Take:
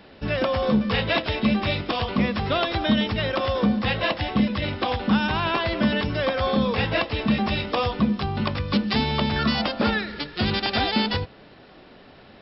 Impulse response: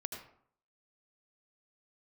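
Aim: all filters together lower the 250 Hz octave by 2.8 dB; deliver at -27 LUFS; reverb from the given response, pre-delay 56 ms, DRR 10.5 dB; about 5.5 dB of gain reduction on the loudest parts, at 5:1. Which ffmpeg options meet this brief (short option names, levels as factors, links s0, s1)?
-filter_complex "[0:a]equalizer=f=250:t=o:g=-3.5,acompressor=threshold=0.0631:ratio=5,asplit=2[s0][s1];[1:a]atrim=start_sample=2205,adelay=56[s2];[s1][s2]afir=irnorm=-1:irlink=0,volume=0.316[s3];[s0][s3]amix=inputs=2:normalize=0,volume=1.06"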